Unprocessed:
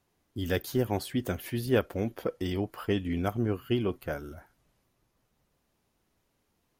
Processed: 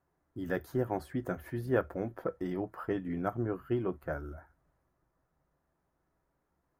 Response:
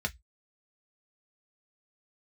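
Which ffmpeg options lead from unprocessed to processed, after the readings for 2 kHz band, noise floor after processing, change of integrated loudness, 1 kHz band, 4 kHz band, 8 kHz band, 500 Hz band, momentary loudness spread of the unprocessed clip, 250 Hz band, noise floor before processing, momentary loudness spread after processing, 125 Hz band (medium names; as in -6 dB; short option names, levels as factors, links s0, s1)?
-4.0 dB, -80 dBFS, -4.0 dB, -1.0 dB, under -15 dB, under -10 dB, -3.0 dB, 9 LU, -4.5 dB, -76 dBFS, 8 LU, -5.5 dB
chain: -filter_complex "[0:a]highshelf=f=2100:t=q:w=1.5:g=-9,asplit=2[s0][s1];[1:a]atrim=start_sample=2205[s2];[s1][s2]afir=irnorm=-1:irlink=0,volume=0.237[s3];[s0][s3]amix=inputs=2:normalize=0,volume=0.596"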